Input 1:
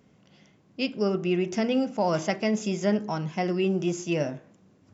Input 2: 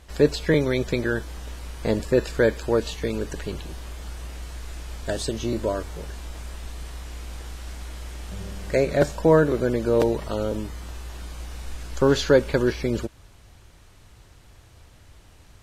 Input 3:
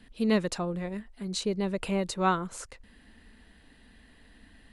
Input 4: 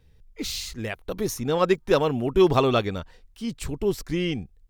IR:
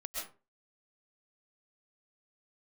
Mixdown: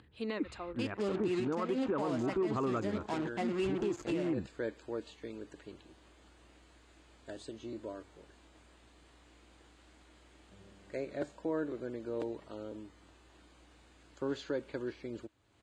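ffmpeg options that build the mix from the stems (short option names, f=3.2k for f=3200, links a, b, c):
-filter_complex "[0:a]acrusher=bits=4:mix=0:aa=0.5,volume=-6dB[a];[1:a]adelay=2200,volume=-18.5dB[b];[2:a]agate=range=-12dB:threshold=-51dB:ratio=16:detection=peak,highpass=f=1k:p=1,highshelf=f=3.8k:g=-9.5,volume=1dB[c];[3:a]lowpass=f=1.7k:w=0.5412,lowpass=f=1.7k:w=1.3066,aecho=1:1:0.8:0.42,volume=-3.5dB,asplit=2[d][e];[e]apad=whole_len=208225[f];[c][f]sidechaincompress=threshold=-42dB:ratio=8:attack=16:release=368[g];[a][b][d]amix=inputs=3:normalize=0,asoftclip=type=tanh:threshold=-14dB,alimiter=limit=-22.5dB:level=0:latency=1:release=185,volume=0dB[h];[g][h]amix=inputs=2:normalize=0,acompressor=mode=upward:threshold=-51dB:ratio=2.5,highpass=110,equalizer=f=160:t=q:w=4:g=-7,equalizer=f=310:t=q:w=4:g=7,equalizer=f=5.6k:t=q:w=4:g=-10,lowpass=f=8k:w=0.5412,lowpass=f=8k:w=1.3066,alimiter=level_in=1dB:limit=-24dB:level=0:latency=1:release=94,volume=-1dB"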